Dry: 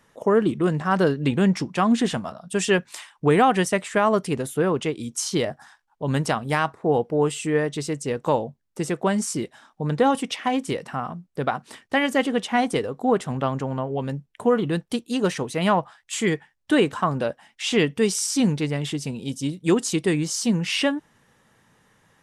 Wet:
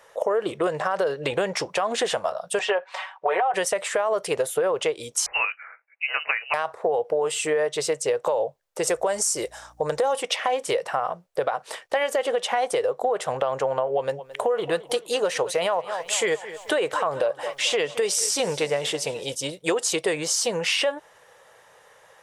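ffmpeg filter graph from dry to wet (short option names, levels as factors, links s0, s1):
-filter_complex "[0:a]asettb=1/sr,asplit=3[s0][s1][s2];[s0]atrim=end=2.594[s3];[s1]atrim=start=2.59:end=3.54,asetpts=PTS-STARTPTS,afade=t=in:d=0.004:c=qsin,afade=t=out:st=0.946:d=0.004:c=qsin,highpass=580,lowpass=2400,equalizer=f=800:t=o:w=0.96:g=5.5,aecho=1:1:5.3:0.96,atrim=end_sample=41895[s4];[s2]atrim=start=3.536[s5];[s3][s4]acrossfade=d=0.004:c1=hsin:c2=qsin[s6];[s6][s5]acrossfade=d=0.004:c1=qsin:c2=hsin,asettb=1/sr,asplit=3[s7][s8][s9];[s7]atrim=end=5.264[s10];[s8]atrim=start=5.26:end=6.54,asetpts=PTS-STARTPTS,afade=t=in:d=0.004:c=qsin,afade=t=out:st=1.276:d=0.004:c=qsin,highpass=570,aecho=1:1:5.7:0.32,atrim=end_sample=56448,lowpass=f=2600:t=q:w=0.5098,lowpass=f=2600:t=q:w=0.6013,lowpass=f=2600:t=q:w=0.9,lowpass=f=2600:t=q:w=2.563,afreqshift=-3100[s11];[s9]atrim=start=6.536[s12];[s10][s11]acrossfade=d=0.004:c1=hsin:c2=qsin[s13];[s13][s12]acrossfade=d=0.004:c1=qsin:c2=hsin,asettb=1/sr,asplit=3[s14][s15][s16];[s14]atrim=end=8.874[s17];[s15]atrim=start=8.87:end=10.13,asetpts=PTS-STARTPTS,afade=t=in:d=0.004:c=qsin,afade=t=out:st=1.256:d=0.004:c=qsin,highshelf=f=4600:t=q:w=1.5:g=7,aeval=exprs='val(0)+0.00398*(sin(2*PI*60*n/s)+sin(2*PI*2*60*n/s)/2+sin(2*PI*3*60*n/s)/3+sin(2*PI*4*60*n/s)/4+sin(2*PI*5*60*n/s)/5)':c=same[s18];[s16]atrim=start=10.126[s19];[s17][s18]acrossfade=d=0.004:c1=hsin:c2=qsin[s20];[s20][s19]acrossfade=d=0.004:c1=qsin:c2=hsin,asettb=1/sr,asplit=3[s21][s22][s23];[s21]atrim=end=13.874[s24];[s22]atrim=start=13.87:end=19.35,asetpts=PTS-STARTPTS,afade=t=in:d=0.004:c=qsin,afade=t=out:st=5.476:d=0.004:c=qsin,acompressor=mode=upward:threshold=0.0282:ratio=2.5:attack=3.2:release=140:knee=2.83:detection=peak,aecho=1:1:218|436|654|872:0.1|0.053|0.0281|0.0149,atrim=end_sample=241668[s25];[s23]atrim=start=19.346[s26];[s24][s25]acrossfade=d=0.004:c1=hsin:c2=qsin[s27];[s27][s26]acrossfade=d=0.004:c1=qsin:c2=hsin,lowshelf=f=360:t=q:w=3:g=-13.5,alimiter=limit=0.168:level=0:latency=1:release=67,acompressor=threshold=0.0447:ratio=4,volume=2.11"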